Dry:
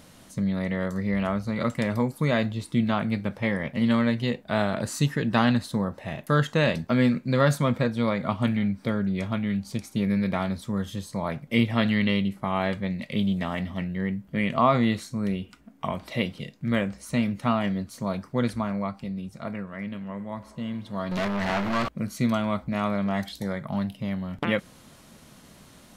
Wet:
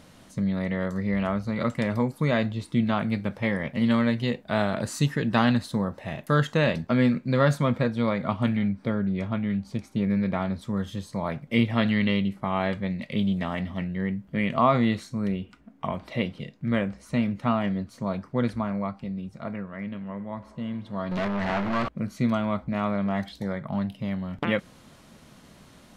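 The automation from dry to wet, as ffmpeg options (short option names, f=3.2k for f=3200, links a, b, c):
-af "asetnsamples=n=441:p=0,asendcmd='2.96 lowpass f 10000;6.57 lowpass f 4300;8.69 lowpass f 2100;10.61 lowpass f 4800;15.28 lowpass f 2700;23.9 lowpass f 5400',lowpass=f=5.3k:p=1"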